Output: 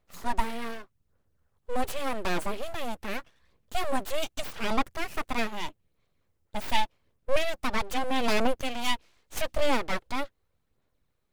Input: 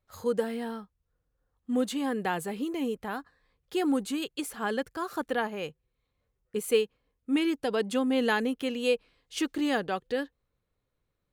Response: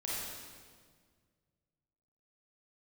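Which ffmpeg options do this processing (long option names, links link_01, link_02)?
-af "aphaser=in_gain=1:out_gain=1:delay=3.2:decay=0.42:speed=0.83:type=sinusoidal,aeval=exprs='abs(val(0))':channel_layout=same,volume=3dB"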